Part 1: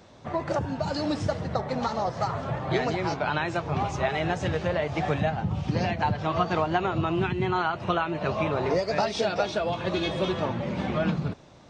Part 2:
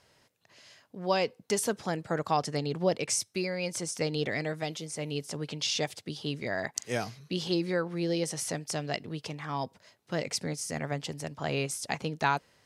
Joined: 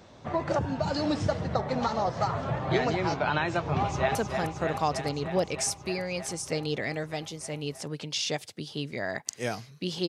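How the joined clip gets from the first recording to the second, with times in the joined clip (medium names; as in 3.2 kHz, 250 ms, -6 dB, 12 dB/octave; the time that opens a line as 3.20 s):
part 1
3.80–4.15 s: echo throw 310 ms, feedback 80%, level -5.5 dB
4.15 s: go over to part 2 from 1.64 s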